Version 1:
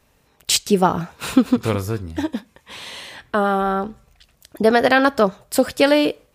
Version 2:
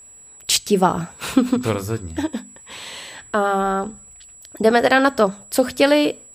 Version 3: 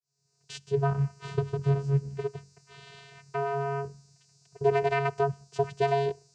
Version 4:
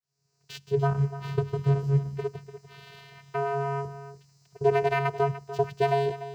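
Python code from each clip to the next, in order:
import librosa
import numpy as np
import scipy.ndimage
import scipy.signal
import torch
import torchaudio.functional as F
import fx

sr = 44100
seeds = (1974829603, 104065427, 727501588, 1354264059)

y1 = x + 10.0 ** (-42.0 / 20.0) * np.sin(2.0 * np.pi * 7800.0 * np.arange(len(x)) / sr)
y1 = fx.hum_notches(y1, sr, base_hz=50, count=5)
y2 = fx.fade_in_head(y1, sr, length_s=1.04)
y2 = fx.vocoder(y2, sr, bands=8, carrier='square', carrier_hz=139.0)
y2 = F.gain(torch.from_numpy(y2), -8.5).numpy()
y3 = scipy.ndimage.median_filter(y2, 5, mode='constant')
y3 = y3 + 10.0 ** (-13.5 / 20.0) * np.pad(y3, (int(294 * sr / 1000.0), 0))[:len(y3)]
y3 = F.gain(torch.from_numpy(y3), 1.5).numpy()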